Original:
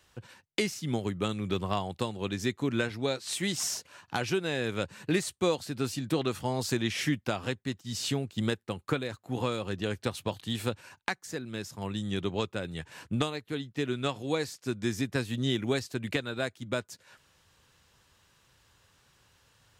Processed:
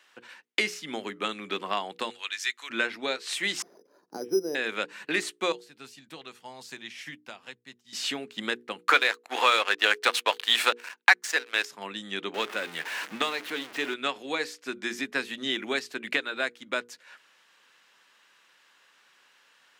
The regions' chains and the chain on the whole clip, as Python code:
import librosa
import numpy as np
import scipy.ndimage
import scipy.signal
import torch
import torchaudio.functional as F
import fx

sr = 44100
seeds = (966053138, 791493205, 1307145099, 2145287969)

y = fx.chain(x, sr, fx.highpass(hz=1400.0, slope=12),
    fx.peak_eq(hz=7400.0, db=5.0, octaves=2.1), at=(2.1, 2.7))
y = fx.chain(y, sr, fx.lowpass_res(hz=410.0, q=2.3),
    fx.resample_bad(factor=8, down='filtered', up='hold'), at=(3.62, 4.55))
y = fx.chain(y, sr, fx.curve_eq(hz=(130.0, 300.0, 900.0, 1300.0, 6400.0), db=(0, -15, -9, -13, -6)),
    fx.upward_expand(threshold_db=-43.0, expansion=1.5), at=(5.52, 7.93))
y = fx.chain(y, sr, fx.highpass(hz=660.0, slope=12),
    fx.leveller(passes=3), at=(8.83, 11.65))
y = fx.chain(y, sr, fx.zero_step(step_db=-35.5),
    fx.low_shelf(hz=150.0, db=-6.5), at=(12.34, 13.94))
y = scipy.signal.sosfilt(scipy.signal.butter(4, 230.0, 'highpass', fs=sr, output='sos'), y)
y = fx.peak_eq(y, sr, hz=2000.0, db=11.5, octaves=2.3)
y = fx.hum_notches(y, sr, base_hz=60, count=8)
y = F.gain(torch.from_numpy(y), -3.5).numpy()